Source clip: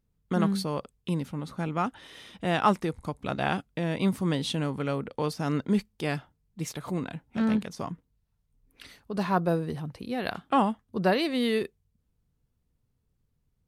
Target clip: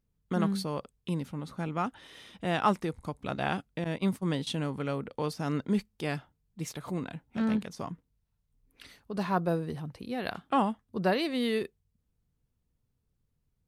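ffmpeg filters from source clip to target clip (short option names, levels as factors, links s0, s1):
-filter_complex "[0:a]asettb=1/sr,asplit=3[s0][s1][s2];[s0]atrim=end=3.844[s3];[s1]atrim=start=3.84:end=4.47,asetpts=PTS-STARTPTS,afade=t=in:d=0.004:c=qsin,afade=t=out:st=0.626:d=0.004:c=qsin,agate=range=0.112:threshold=0.0355:ratio=16:detection=peak[s4];[s2]atrim=start=4.466[s5];[s3][s4]acrossfade=d=0.004:c1=hsin:c2=qsin[s6];[s6][s5]acrossfade=d=0.004:c1=qsin:c2=hsin,volume=0.708"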